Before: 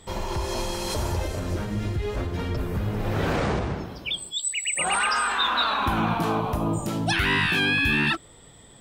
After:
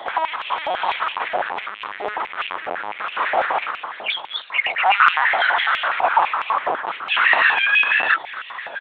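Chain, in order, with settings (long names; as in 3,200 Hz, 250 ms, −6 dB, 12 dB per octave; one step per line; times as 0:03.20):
0:00.81–0:01.53: leveller curve on the samples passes 1
0:05.13–0:05.91: ring modulation 460 Hz
power curve on the samples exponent 0.5
high-frequency loss of the air 230 metres
slap from a distant wall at 200 metres, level −12 dB
linear-prediction vocoder at 8 kHz pitch kept
high-pass on a step sequencer 12 Hz 730–2,700 Hz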